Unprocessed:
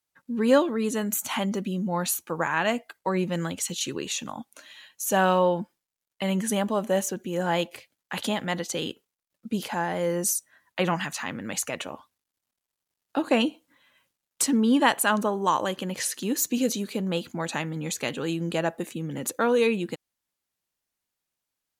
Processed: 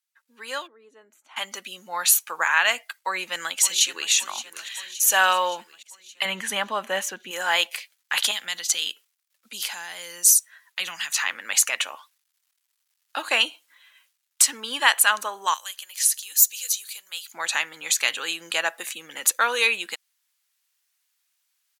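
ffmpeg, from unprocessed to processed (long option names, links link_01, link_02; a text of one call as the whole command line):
ffmpeg -i in.wav -filter_complex "[0:a]asplit=3[link_01][link_02][link_03];[link_01]afade=type=out:start_time=0.66:duration=0.02[link_04];[link_02]bandpass=frequency=340:width_type=q:width=2.4,afade=type=in:start_time=0.66:duration=0.02,afade=type=out:start_time=1.36:duration=0.02[link_05];[link_03]afade=type=in:start_time=1.36:duration=0.02[link_06];[link_04][link_05][link_06]amix=inputs=3:normalize=0,asplit=2[link_07][link_08];[link_08]afade=type=in:start_time=3.01:duration=0.01,afade=type=out:start_time=4.11:duration=0.01,aecho=0:1:570|1140|1710|2280|2850|3420:0.188365|0.113019|0.0678114|0.0406868|0.0244121|0.0146473[link_09];[link_07][link_09]amix=inputs=2:normalize=0,asettb=1/sr,asplit=3[link_10][link_11][link_12];[link_10]atrim=end=6.254[link_13];[link_11]atrim=start=6.25:end=7.31,asetpts=PTS-STARTPTS,afade=type=in:duration=0.004:curve=qsin,afade=type=out:start_time=1.056:duration=0.004:curve=qsin,bass=frequency=250:gain=13,treble=frequency=4000:gain=-12[link_14];[link_12]atrim=start=7.306[link_15];[link_13][link_14]acrossfade=duration=0.004:curve1=hsin:curve2=qsin[link_16];[link_16][link_15]acrossfade=duration=0.004:curve1=qsin:curve2=hsin,asettb=1/sr,asplit=3[link_17][link_18][link_19];[link_17]atrim=end=8.314[link_20];[link_18]atrim=start=8.31:end=11.16,asetpts=PTS-STARTPTS,afade=type=in:duration=0.004:curve=qsin,afade=type=out:start_time=2.846:duration=0.004:curve=qsin,acrossover=split=240|3000[link_21][link_22][link_23];[link_22]acompressor=threshold=-43dB:ratio=3:attack=3.2:release=140:knee=2.83:detection=peak[link_24];[link_21][link_24][link_23]amix=inputs=3:normalize=0[link_25];[link_19]atrim=start=11.156[link_26];[link_20][link_25]acrossfade=duration=0.004:curve1=hsin:curve2=qsin[link_27];[link_27][link_26]acrossfade=duration=0.004:curve1=qsin:curve2=hsin,asettb=1/sr,asplit=3[link_28][link_29][link_30];[link_28]atrim=end=15.544[link_31];[link_29]atrim=start=15.54:end=17.32,asetpts=PTS-STARTPTS,afade=type=in:duration=0.004:curve=qsin,afade=type=out:start_time=1.776:duration=0.004:curve=qsin,aderivative[link_32];[link_30]atrim=start=17.316[link_33];[link_31][link_32]acrossfade=duration=0.004:curve1=hsin:curve2=qsin[link_34];[link_34][link_33]acrossfade=duration=0.004:curve1=qsin:curve2=hsin,highpass=1500,dynaudnorm=framelen=300:gausssize=9:maxgain=12dB" out.wav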